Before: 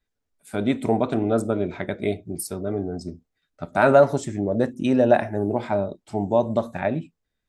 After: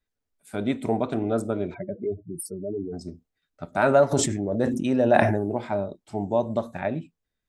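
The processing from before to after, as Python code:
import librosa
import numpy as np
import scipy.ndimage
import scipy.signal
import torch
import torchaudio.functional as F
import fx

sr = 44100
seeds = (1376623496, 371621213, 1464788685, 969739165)

y = fx.spec_expand(x, sr, power=2.8, at=(1.73, 2.92), fade=0.02)
y = fx.sustainer(y, sr, db_per_s=41.0, at=(4.11, 5.42), fade=0.02)
y = y * librosa.db_to_amplitude(-3.5)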